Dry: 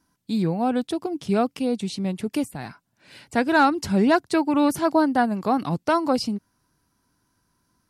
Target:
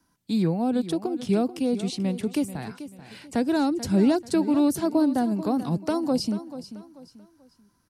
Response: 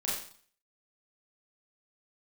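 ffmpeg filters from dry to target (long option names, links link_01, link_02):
-filter_complex "[0:a]acrossover=split=130|570|4100[link_01][link_02][link_03][link_04];[link_03]acompressor=threshold=-37dB:ratio=6[link_05];[link_01][link_02][link_05][link_04]amix=inputs=4:normalize=0,aecho=1:1:437|874|1311:0.211|0.0697|0.023"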